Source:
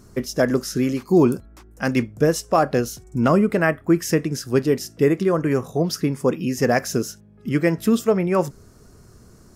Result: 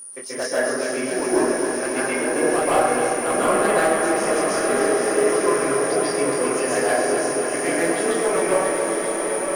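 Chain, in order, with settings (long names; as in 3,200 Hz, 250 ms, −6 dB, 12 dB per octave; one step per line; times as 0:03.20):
high-pass filter 580 Hz 12 dB per octave
treble cut that deepens with the level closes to 2,200 Hz, closed at −22 dBFS
steady tone 9,500 Hz −31 dBFS
chorus effect 1.5 Hz, delay 19.5 ms, depth 4.6 ms
hard clipping −20 dBFS, distortion −15 dB
on a send: feedback delay with all-pass diffusion 961 ms, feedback 59%, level −5.5 dB
on the sum: dense smooth reverb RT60 1.3 s, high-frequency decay 0.5×, pre-delay 120 ms, DRR −7.5 dB
feedback echo at a low word length 268 ms, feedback 80%, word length 8 bits, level −7.5 dB
level −1 dB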